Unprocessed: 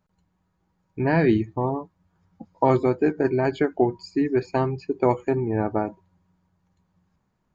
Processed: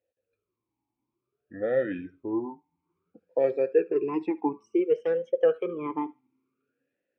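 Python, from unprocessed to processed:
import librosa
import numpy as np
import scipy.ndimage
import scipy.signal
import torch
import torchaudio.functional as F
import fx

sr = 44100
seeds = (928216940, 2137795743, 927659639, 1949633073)

y = fx.speed_glide(x, sr, from_pct=54, to_pct=156)
y = fx.echo_thinned(y, sr, ms=73, feedback_pct=22, hz=730.0, wet_db=-21)
y = fx.vowel_sweep(y, sr, vowels='e-u', hz=0.57)
y = y * 10.0 ** (4.0 / 20.0)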